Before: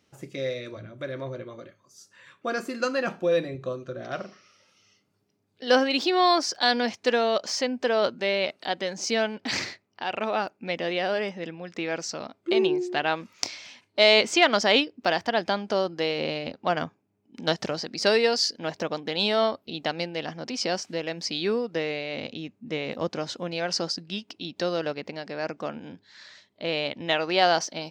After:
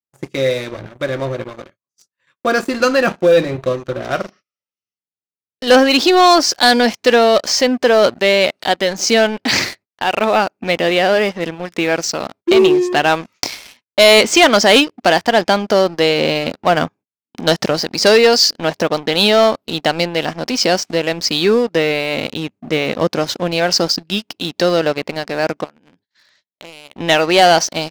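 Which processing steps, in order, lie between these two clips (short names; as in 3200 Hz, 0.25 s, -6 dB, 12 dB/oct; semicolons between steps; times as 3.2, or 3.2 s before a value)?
gate -50 dBFS, range -32 dB; 25.64–26.96 compressor 3:1, threshold -49 dBFS, peak gain reduction 18 dB; sample leveller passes 3; gain +2 dB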